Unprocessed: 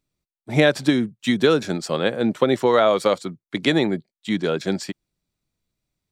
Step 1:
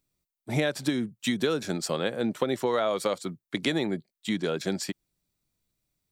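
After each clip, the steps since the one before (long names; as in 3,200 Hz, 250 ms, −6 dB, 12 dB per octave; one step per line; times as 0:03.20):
high-shelf EQ 8,700 Hz +11 dB
downward compressor 2.5 to 1, threshold −24 dBFS, peak gain reduction 9.5 dB
level −2 dB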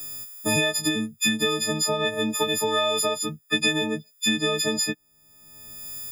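every partial snapped to a pitch grid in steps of 6 semitones
multiband upward and downward compressor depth 100%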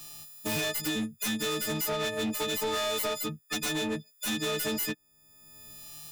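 phase distortion by the signal itself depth 0.17 ms
hard clipping −23.5 dBFS, distortion −10 dB
level −3 dB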